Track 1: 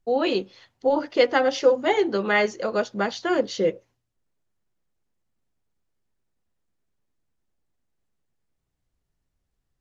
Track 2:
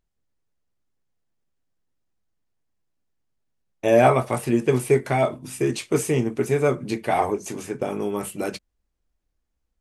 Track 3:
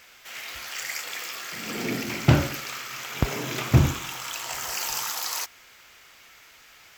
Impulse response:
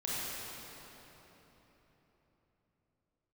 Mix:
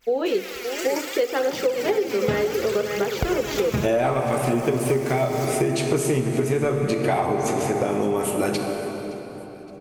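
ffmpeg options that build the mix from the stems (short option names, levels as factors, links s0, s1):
-filter_complex "[0:a]equalizer=f=430:t=o:w=0.41:g=14,volume=0.596,asplit=3[s0][s1][s2];[s1]volume=0.112[s3];[s2]volume=0.355[s4];[1:a]acontrast=82,volume=0.75,asplit=4[s5][s6][s7][s8];[s6]volume=0.447[s9];[s7]volume=0.0944[s10];[2:a]agate=range=0.0224:threshold=0.00447:ratio=3:detection=peak,aphaser=in_gain=1:out_gain=1:delay=5:decay=0.69:speed=0.66:type=triangular,volume=0.75,asplit=2[s11][s12];[s12]volume=0.168[s13];[s8]apad=whole_len=307488[s14];[s11][s14]sidechaincompress=threshold=0.0631:ratio=8:attack=16:release=390[s15];[3:a]atrim=start_sample=2205[s16];[s3][s9][s13]amix=inputs=3:normalize=0[s17];[s17][s16]afir=irnorm=-1:irlink=0[s18];[s4][s10]amix=inputs=2:normalize=0,aecho=0:1:568|1136|1704|2272|2840|3408|3976:1|0.47|0.221|0.104|0.0488|0.0229|0.0108[s19];[s0][s5][s15][s18][s19]amix=inputs=5:normalize=0,acompressor=threshold=0.126:ratio=10"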